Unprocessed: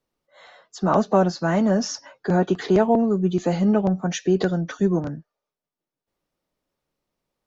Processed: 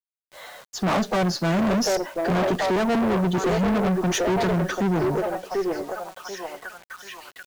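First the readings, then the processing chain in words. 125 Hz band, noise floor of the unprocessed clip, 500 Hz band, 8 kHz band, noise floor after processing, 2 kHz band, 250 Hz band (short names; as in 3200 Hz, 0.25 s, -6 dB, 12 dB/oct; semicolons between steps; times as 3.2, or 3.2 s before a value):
-1.0 dB, under -85 dBFS, -1.0 dB, n/a, under -85 dBFS, +4.5 dB, -2.0 dB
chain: delay with a stepping band-pass 0.738 s, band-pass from 500 Hz, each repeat 0.7 oct, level -2.5 dB; tube stage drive 27 dB, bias 0.3; bit-crush 9-bit; gain +7.5 dB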